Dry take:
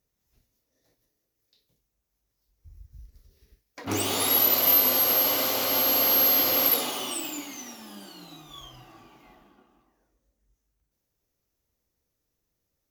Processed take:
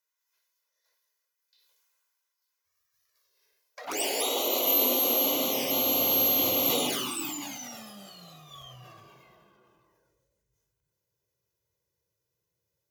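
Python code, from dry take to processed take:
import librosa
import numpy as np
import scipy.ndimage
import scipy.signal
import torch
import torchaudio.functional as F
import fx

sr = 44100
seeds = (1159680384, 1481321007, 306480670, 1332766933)

y = fx.env_flanger(x, sr, rest_ms=2.0, full_db=-22.0)
y = fx.filter_sweep_highpass(y, sr, from_hz=1200.0, to_hz=120.0, start_s=3.01, end_s=6.09, q=1.5)
y = fx.sustainer(y, sr, db_per_s=22.0)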